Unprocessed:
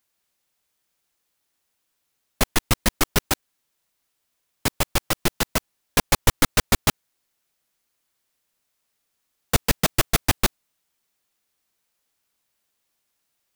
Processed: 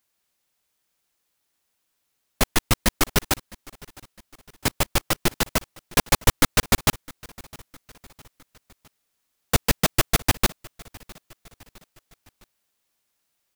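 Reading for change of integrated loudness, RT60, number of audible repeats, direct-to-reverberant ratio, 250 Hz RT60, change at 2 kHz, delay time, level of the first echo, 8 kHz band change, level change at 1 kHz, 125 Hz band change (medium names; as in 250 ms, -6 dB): 0.0 dB, no reverb, 3, no reverb, no reverb, 0.0 dB, 659 ms, -23.0 dB, 0.0 dB, 0.0 dB, 0.0 dB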